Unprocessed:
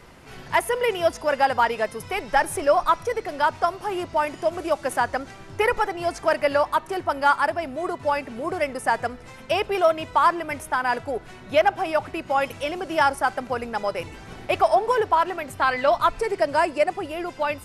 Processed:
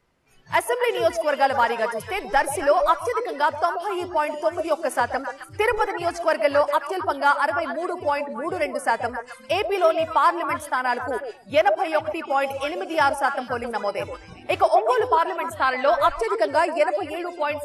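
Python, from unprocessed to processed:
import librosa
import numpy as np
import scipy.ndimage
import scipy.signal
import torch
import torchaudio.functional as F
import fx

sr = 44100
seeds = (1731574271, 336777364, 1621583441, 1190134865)

y = fx.noise_reduce_blind(x, sr, reduce_db=20)
y = fx.echo_stepped(y, sr, ms=132, hz=520.0, octaves=1.4, feedback_pct=70, wet_db=-5)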